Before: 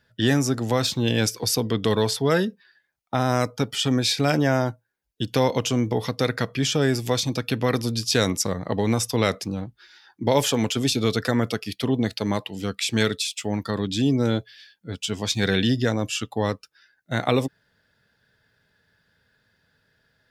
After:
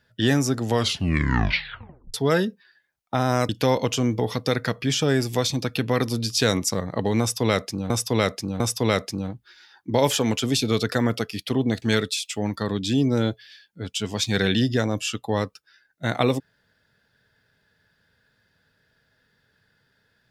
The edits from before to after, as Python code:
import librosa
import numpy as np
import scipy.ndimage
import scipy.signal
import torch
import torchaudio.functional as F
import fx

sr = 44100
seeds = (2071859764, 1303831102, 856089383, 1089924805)

y = fx.edit(x, sr, fx.tape_stop(start_s=0.66, length_s=1.48),
    fx.cut(start_s=3.49, length_s=1.73),
    fx.repeat(start_s=8.93, length_s=0.7, count=3),
    fx.cut(start_s=12.15, length_s=0.75), tone=tone)